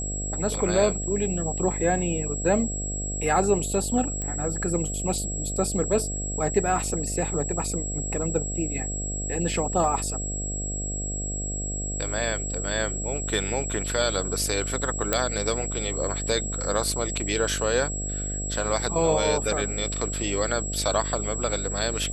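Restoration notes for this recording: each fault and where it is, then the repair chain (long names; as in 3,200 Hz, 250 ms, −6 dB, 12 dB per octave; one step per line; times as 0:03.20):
mains buzz 50 Hz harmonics 14 −32 dBFS
whistle 7,700 Hz −31 dBFS
0:04.22: click −17 dBFS
0:15.13: click −6 dBFS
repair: click removal
hum removal 50 Hz, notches 14
notch filter 7,700 Hz, Q 30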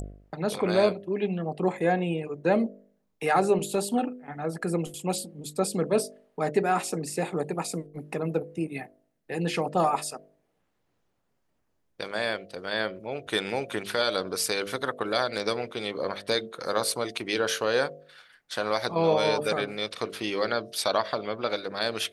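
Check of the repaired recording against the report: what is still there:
none of them is left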